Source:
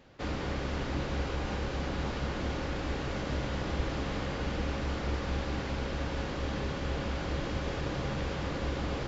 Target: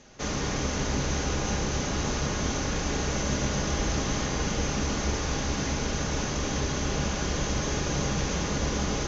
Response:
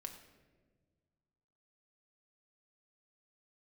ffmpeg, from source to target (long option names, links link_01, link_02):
-filter_complex "[0:a]lowpass=frequency=6300:width_type=q:width=11[link_01];[1:a]atrim=start_sample=2205[link_02];[link_01][link_02]afir=irnorm=-1:irlink=0,volume=8.5dB"